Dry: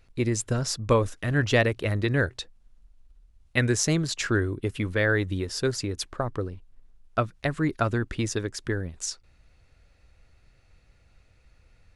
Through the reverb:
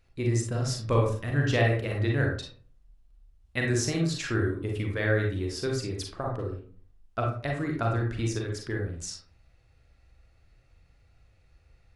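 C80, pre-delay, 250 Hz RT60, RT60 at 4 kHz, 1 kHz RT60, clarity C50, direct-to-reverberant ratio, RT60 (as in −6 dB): 9.5 dB, 34 ms, 0.60 s, 0.25 s, 0.45 s, 4.0 dB, −0.5 dB, 0.45 s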